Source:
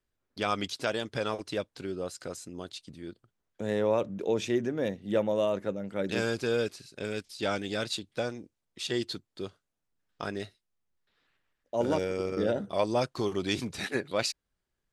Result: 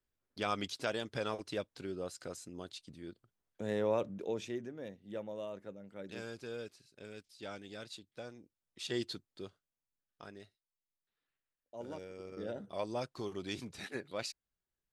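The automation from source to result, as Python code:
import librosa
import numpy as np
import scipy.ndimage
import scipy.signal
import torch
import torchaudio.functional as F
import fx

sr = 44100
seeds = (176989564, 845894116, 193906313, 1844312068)

y = fx.gain(x, sr, db=fx.line((4.05, -5.5), (4.77, -15.0), (8.21, -15.0), (9.01, -5.0), (10.42, -17.0), (12.14, -17.0), (12.7, -10.5)))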